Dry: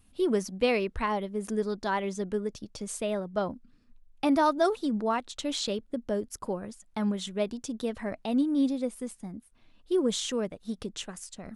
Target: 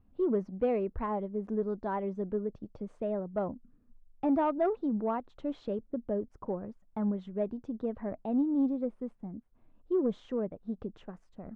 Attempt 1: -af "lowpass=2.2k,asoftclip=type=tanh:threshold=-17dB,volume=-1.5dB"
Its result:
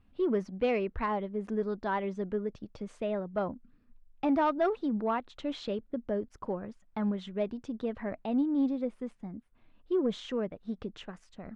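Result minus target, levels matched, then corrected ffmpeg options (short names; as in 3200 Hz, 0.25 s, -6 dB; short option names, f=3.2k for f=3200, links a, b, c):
2000 Hz band +8.0 dB
-af "lowpass=930,asoftclip=type=tanh:threshold=-17dB,volume=-1.5dB"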